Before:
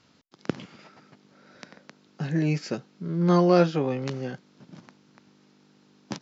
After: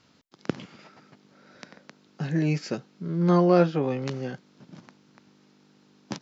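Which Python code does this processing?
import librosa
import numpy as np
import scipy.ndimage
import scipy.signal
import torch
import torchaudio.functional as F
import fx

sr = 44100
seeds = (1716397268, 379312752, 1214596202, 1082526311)

y = fx.high_shelf(x, sr, hz=4100.0, db=-10.0, at=(3.3, 3.83))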